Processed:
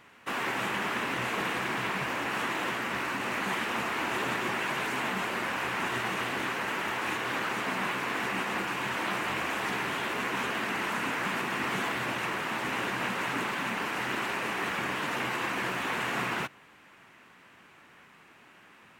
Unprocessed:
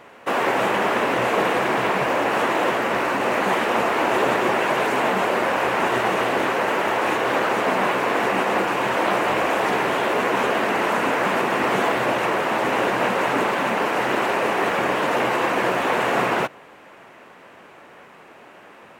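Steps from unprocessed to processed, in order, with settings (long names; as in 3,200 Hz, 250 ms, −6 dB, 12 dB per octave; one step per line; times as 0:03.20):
parametric band 560 Hz −13 dB 1.6 octaves
level −5 dB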